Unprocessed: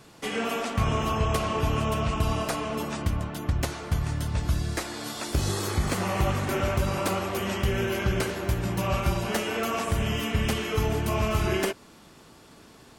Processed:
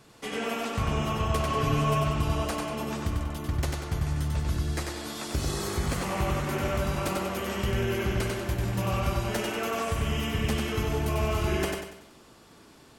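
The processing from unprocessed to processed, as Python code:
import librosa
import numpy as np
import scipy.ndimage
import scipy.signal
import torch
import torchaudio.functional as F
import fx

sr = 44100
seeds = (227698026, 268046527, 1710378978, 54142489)

y = fx.comb(x, sr, ms=7.3, depth=0.87, at=(1.48, 2.02))
y = fx.echo_feedback(y, sr, ms=95, feedback_pct=42, wet_db=-3.5)
y = y * librosa.db_to_amplitude(-4.0)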